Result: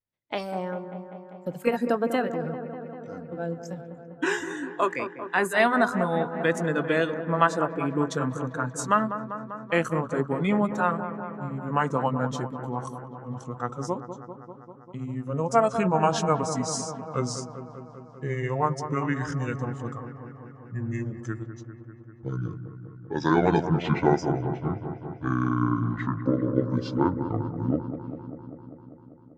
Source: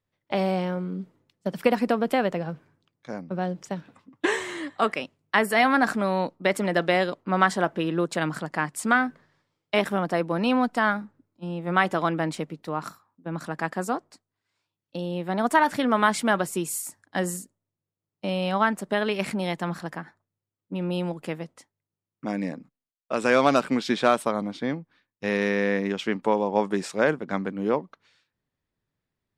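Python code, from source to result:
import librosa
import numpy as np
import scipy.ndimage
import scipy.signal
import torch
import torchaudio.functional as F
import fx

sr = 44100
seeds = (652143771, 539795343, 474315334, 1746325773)

p1 = fx.pitch_glide(x, sr, semitones=-10.0, runs='starting unshifted')
p2 = fx.vibrato(p1, sr, rate_hz=0.57, depth_cents=42.0)
p3 = fx.noise_reduce_blind(p2, sr, reduce_db=12)
y = p3 + fx.echo_wet_lowpass(p3, sr, ms=197, feedback_pct=74, hz=1400.0, wet_db=-9.5, dry=0)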